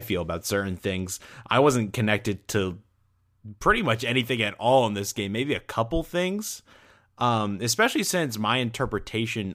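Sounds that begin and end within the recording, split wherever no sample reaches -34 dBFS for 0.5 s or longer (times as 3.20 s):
3.46–6.57 s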